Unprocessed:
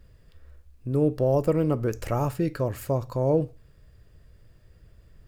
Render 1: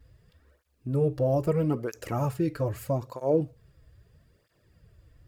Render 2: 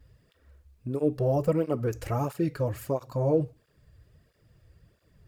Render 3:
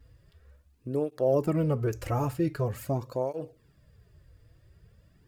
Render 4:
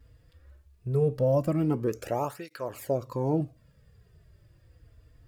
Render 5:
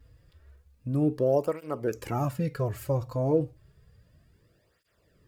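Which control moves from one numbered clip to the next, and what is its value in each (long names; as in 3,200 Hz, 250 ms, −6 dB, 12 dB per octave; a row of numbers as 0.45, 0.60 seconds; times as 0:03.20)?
through-zero flanger with one copy inverted, nulls at: 0.78, 1.5, 0.45, 0.2, 0.31 Hertz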